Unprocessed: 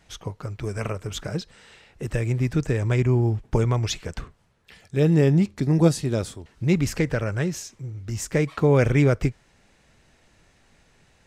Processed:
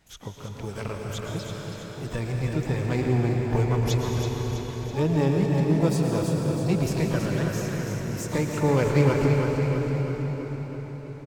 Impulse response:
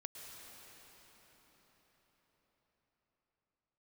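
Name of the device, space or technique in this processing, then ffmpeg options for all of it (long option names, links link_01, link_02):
shimmer-style reverb: -filter_complex "[0:a]asplit=2[link_01][link_02];[link_02]asetrate=88200,aresample=44100,atempo=0.5,volume=-10dB[link_03];[link_01][link_03]amix=inputs=2:normalize=0[link_04];[1:a]atrim=start_sample=2205[link_05];[link_04][link_05]afir=irnorm=-1:irlink=0,asettb=1/sr,asplit=3[link_06][link_07][link_08];[link_06]atrim=end=5.864[link_09];[link_07]atrim=start=5.86:end=7.73,asetpts=PTS-STARTPTS,afade=type=in:duration=0.004:curve=qsin,afade=type=out:start_time=1.866:duration=0.004:curve=qsin,bandreject=frequency=2100:width=10[link_10];[link_08]atrim=start=7.726[link_11];[link_09][link_10]acrossfade=duration=0.004:curve1=hsin:curve2=qsin[link_12];[link_12][link_11]acrossfade=duration=0.004:curve1=qsin:curve2=hsin,aecho=1:1:327|654|981|1308|1635|1962|2289:0.447|0.241|0.13|0.0703|0.038|0.0205|0.0111"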